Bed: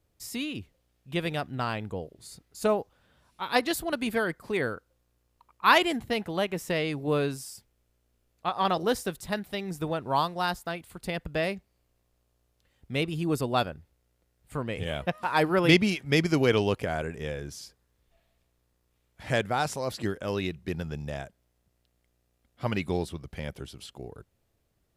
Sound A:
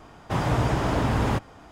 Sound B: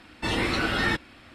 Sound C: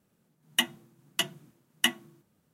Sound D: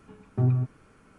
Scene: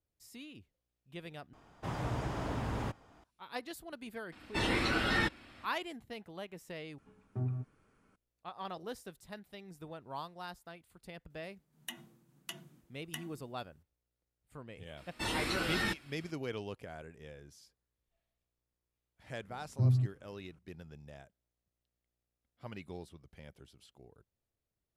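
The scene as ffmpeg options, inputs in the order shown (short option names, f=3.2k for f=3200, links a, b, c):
-filter_complex "[2:a]asplit=2[a][b];[4:a]asplit=2[c][d];[0:a]volume=-16.5dB[e];[3:a]acompressor=threshold=-32dB:ratio=6:attack=3.2:release=140:knee=1:detection=peak[f];[b]aemphasis=mode=production:type=50kf[g];[d]equalizer=f=90:w=0.33:g=14[h];[e]asplit=3[i][j][k];[i]atrim=end=1.534[l];[1:a]atrim=end=1.71,asetpts=PTS-STARTPTS,volume=-13dB[m];[j]atrim=start=3.236:end=6.984[n];[c]atrim=end=1.18,asetpts=PTS-STARTPTS,volume=-12.5dB[o];[k]atrim=start=8.156[p];[a]atrim=end=1.34,asetpts=PTS-STARTPTS,volume=-5.5dB,afade=t=in:d=0.004:c=hsin,afade=t=out:st=1.336:d=0.004:c=hsin,adelay=4320[q];[f]atrim=end=2.53,asetpts=PTS-STARTPTS,volume=-6dB,afade=t=in:d=0.004:c=hsin,afade=t=out:st=2.526:d=0.004:c=hsin,adelay=498330S[r];[g]atrim=end=1.34,asetpts=PTS-STARTPTS,volume=-10.5dB,afade=t=in:d=0.004:c=hsin,afade=t=out:st=1.336:d=0.004:c=hsin,adelay=14970[s];[h]atrim=end=1.18,asetpts=PTS-STARTPTS,volume=-17.5dB,afade=t=in:d=0.004:c=hsin,afade=t=out:st=1.176:d=0.004:c=hsin,adelay=19410[t];[l][m]acrossfade=d=0.004:c1=hsin:c2=hsin[u];[u][n]acrossfade=d=0.004:c1=hsin:c2=hsin[v];[v][o]acrossfade=d=0.004:c1=hsin:c2=hsin[w];[w][p]acrossfade=d=0.004:c1=hsin:c2=hsin[x];[x][q][r][s][t]amix=inputs=5:normalize=0"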